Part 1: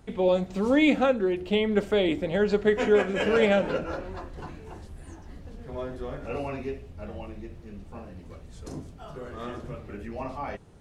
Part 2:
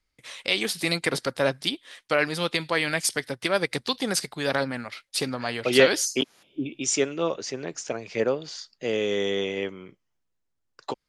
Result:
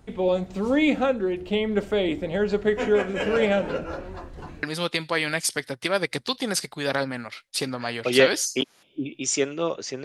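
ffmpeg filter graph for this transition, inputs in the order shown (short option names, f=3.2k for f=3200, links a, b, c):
-filter_complex "[0:a]apad=whole_dur=10.04,atrim=end=10.04,atrim=end=4.632[a];[1:a]atrim=start=2.228:end=7.64[b];[a][b]acrossfade=d=0.004:c1=hsin:c2=hsin"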